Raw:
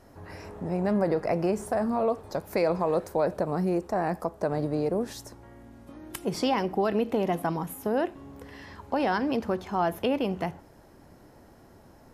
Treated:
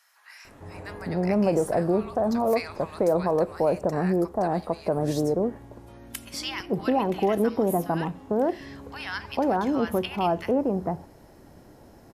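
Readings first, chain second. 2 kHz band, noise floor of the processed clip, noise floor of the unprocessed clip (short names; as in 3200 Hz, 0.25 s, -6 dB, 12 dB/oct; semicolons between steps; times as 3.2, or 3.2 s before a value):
+1.0 dB, -52 dBFS, -54 dBFS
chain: bands offset in time highs, lows 0.45 s, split 1300 Hz; gain +3 dB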